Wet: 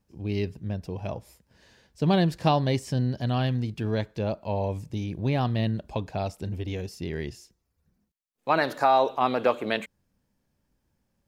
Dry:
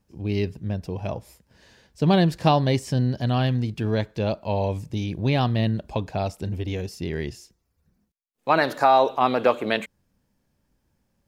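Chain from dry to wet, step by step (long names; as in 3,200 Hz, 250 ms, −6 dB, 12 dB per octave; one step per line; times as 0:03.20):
0:04.15–0:05.45: dynamic equaliser 3,600 Hz, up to −6 dB, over −44 dBFS, Q 1.1
level −3.5 dB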